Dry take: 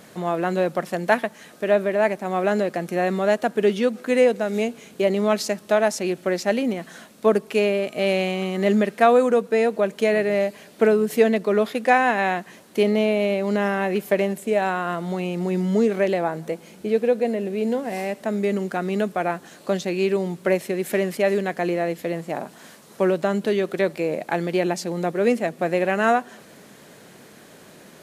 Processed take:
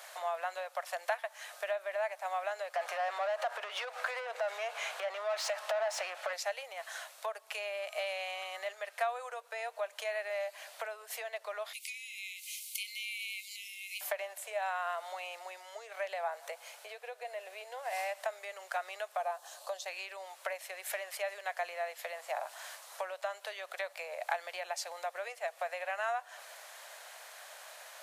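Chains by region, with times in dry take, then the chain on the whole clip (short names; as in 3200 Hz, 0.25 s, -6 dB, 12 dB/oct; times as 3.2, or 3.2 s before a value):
2.75–6.33 low shelf 270 Hz -10 dB + compressor 4:1, threshold -26 dBFS + overdrive pedal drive 25 dB, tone 1100 Hz, clips at -12.5 dBFS
11.73–14.01 tilt +4 dB/oct + compressor 5:1, threshold -32 dBFS + Chebyshev high-pass 2100 Hz, order 10
19.17–19.86 bell 2100 Hz -12 dB 0.88 oct + notch 1400 Hz
whole clip: compressor 10:1, threshold -28 dBFS; steep high-pass 610 Hz 48 dB/oct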